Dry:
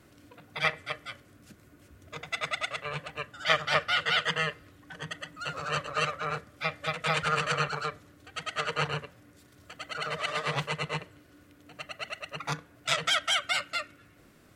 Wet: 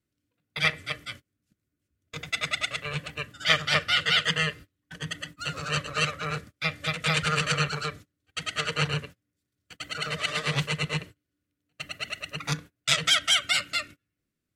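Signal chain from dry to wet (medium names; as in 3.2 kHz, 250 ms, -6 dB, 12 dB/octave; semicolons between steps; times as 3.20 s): gate -45 dBFS, range -30 dB; peaking EQ 840 Hz -12 dB 1.9 oct; trim +7.5 dB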